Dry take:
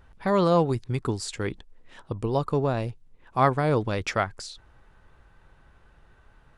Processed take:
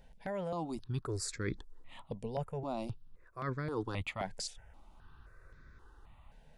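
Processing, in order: reverse; compression 12:1, threshold -30 dBFS, peak gain reduction 16 dB; reverse; stepped phaser 3.8 Hz 330–2900 Hz

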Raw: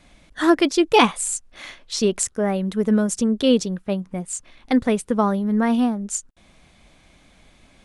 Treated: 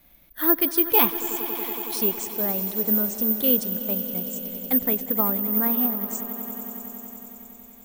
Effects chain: on a send: echo with a slow build-up 93 ms, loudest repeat 5, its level -16 dB; on the sum: careless resampling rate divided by 3×, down filtered, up zero stuff; trim -8.5 dB

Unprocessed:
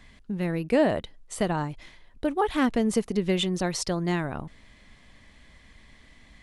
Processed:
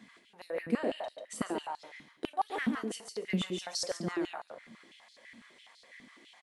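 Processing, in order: feedback delay 141 ms, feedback 17%, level -5.5 dB; compression 1.5:1, threshold -43 dBFS, peak gain reduction 9.5 dB; on a send at -8.5 dB: treble shelf 4.8 kHz +11.5 dB + reverberation RT60 0.50 s, pre-delay 4 ms; on the sum: step-sequenced high-pass 12 Hz 220–4500 Hz; trim -5 dB

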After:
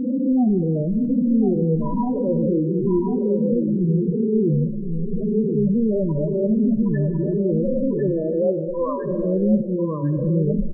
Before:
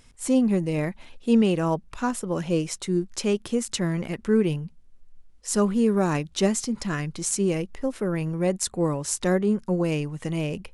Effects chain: reverse spectral sustain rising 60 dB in 1.59 s; recorder AGC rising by 8.3 dB/s; 8.10–9.04 s: high-pass 360 Hz -> 830 Hz 12 dB/octave; 9.61–10.03 s: expander -8 dBFS; low-pass 1.9 kHz 12 dB/octave; waveshaping leveller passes 5; loudest bins only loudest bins 4; delay 1049 ms -6.5 dB; gated-style reverb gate 430 ms falling, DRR 11 dB; trim -8 dB

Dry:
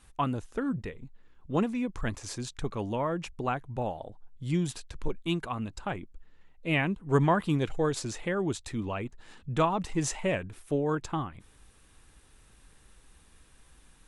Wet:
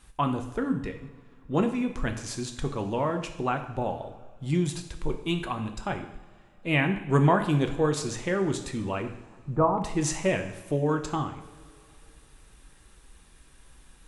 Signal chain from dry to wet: 9.02–9.78 s: low-pass 1.2 kHz 24 dB/octave; two-slope reverb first 0.74 s, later 3 s, from -18 dB, DRR 5.5 dB; trim +2 dB

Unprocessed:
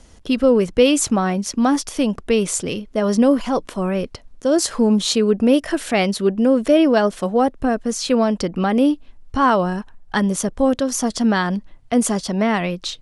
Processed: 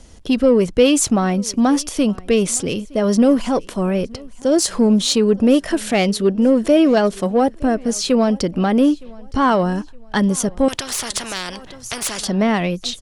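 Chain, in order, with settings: peaking EQ 1.3 kHz -3.5 dB 1.8 oct; in parallel at -6 dB: saturation -18 dBFS, distortion -10 dB; on the sum: feedback delay 915 ms, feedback 36%, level -24 dB; 10.68–12.25 s: spectrum-flattening compressor 4:1

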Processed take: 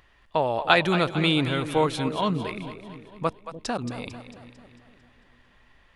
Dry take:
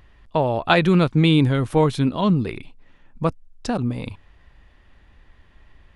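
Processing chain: bass shelf 360 Hz -12 dB; on a send: two-band feedback delay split 500 Hz, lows 297 ms, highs 224 ms, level -11 dB

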